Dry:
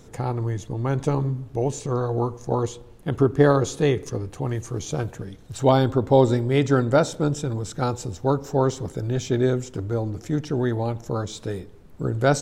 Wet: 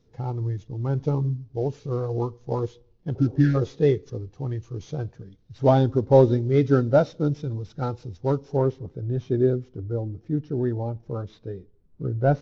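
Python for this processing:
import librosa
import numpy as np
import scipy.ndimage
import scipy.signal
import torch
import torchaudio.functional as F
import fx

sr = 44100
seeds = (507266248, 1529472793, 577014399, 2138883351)

y = fx.cvsd(x, sr, bps=32000)
y = fx.spec_repair(y, sr, seeds[0], start_s=3.18, length_s=0.34, low_hz=370.0, high_hz=1300.0, source='before')
y = fx.high_shelf(y, sr, hz=3300.0, db=fx.steps((0.0, 7.0), (8.56, -2.0)))
y = fx.spectral_expand(y, sr, expansion=1.5)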